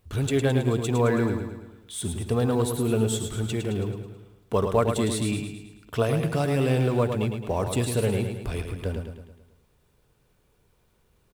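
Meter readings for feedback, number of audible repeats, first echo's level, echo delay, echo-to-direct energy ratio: 51%, 5, -6.5 dB, 0.108 s, -5.0 dB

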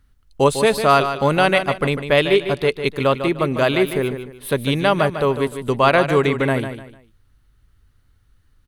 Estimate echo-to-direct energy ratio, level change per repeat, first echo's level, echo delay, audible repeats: -9.0 dB, -10.5 dB, -9.5 dB, 0.15 s, 3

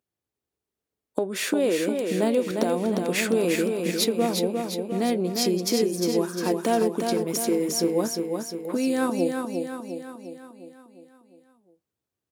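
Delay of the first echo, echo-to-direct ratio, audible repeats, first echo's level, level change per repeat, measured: 0.353 s, -3.5 dB, 6, -5.0 dB, -5.0 dB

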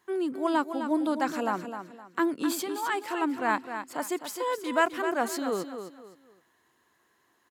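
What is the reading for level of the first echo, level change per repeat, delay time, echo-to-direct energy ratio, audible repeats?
-9.0 dB, -10.5 dB, 0.258 s, -8.5 dB, 3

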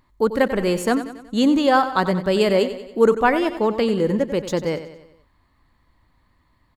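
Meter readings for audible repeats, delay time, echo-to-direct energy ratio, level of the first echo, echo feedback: 4, 93 ms, -10.5 dB, -12.0 dB, 51%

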